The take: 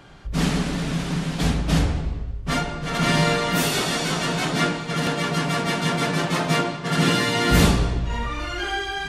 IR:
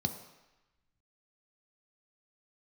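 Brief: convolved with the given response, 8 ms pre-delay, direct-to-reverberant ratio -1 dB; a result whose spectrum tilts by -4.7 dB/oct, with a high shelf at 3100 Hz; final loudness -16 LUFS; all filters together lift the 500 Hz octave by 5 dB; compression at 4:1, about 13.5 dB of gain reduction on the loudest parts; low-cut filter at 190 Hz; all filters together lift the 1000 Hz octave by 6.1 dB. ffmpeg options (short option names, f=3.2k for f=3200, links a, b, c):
-filter_complex "[0:a]highpass=190,equalizer=f=500:t=o:g=4.5,equalizer=f=1k:t=o:g=6,highshelf=f=3.1k:g=7,acompressor=threshold=-29dB:ratio=4,asplit=2[a][b];[1:a]atrim=start_sample=2205,adelay=8[c];[b][c]afir=irnorm=-1:irlink=0,volume=-2.5dB[d];[a][d]amix=inputs=2:normalize=0,volume=8dB"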